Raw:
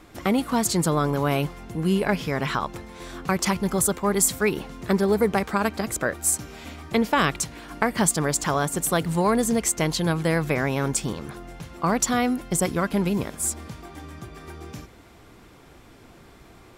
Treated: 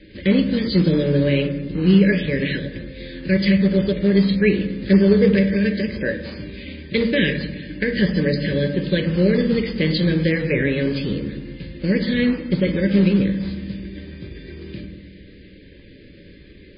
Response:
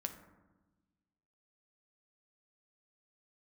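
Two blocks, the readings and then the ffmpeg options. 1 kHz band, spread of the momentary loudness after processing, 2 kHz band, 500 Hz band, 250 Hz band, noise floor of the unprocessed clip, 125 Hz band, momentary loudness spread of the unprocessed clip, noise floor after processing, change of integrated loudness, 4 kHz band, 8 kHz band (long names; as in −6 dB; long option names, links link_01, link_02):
−18.0 dB, 18 LU, +3.5 dB, +4.5 dB, +8.0 dB, −50 dBFS, +7.0 dB, 18 LU, −45 dBFS, +4.5 dB, +4.0 dB, below −40 dB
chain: -filter_complex "[0:a]asuperstop=centerf=970:order=20:qfactor=0.96,acrusher=bits=4:mode=log:mix=0:aa=0.000001[link_01];[1:a]atrim=start_sample=2205[link_02];[link_01][link_02]afir=irnorm=-1:irlink=0,volume=6.5dB" -ar 11025 -c:a libmp3lame -b:a 16k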